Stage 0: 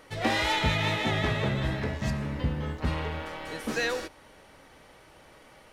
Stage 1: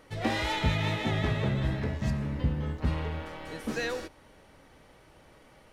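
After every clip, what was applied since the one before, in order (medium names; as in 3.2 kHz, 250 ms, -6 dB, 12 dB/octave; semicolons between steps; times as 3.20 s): bass shelf 380 Hz +6.5 dB; trim -5 dB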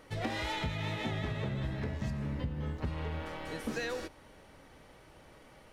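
compression 6:1, threshold -32 dBFS, peak gain reduction 11 dB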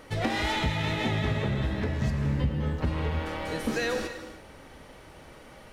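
gated-style reverb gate 340 ms flat, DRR 7.5 dB; trim +7 dB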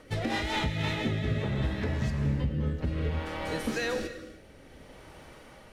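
rotary cabinet horn 5 Hz, later 0.6 Hz, at 0.32 s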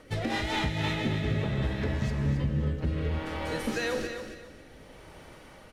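feedback delay 270 ms, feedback 26%, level -9 dB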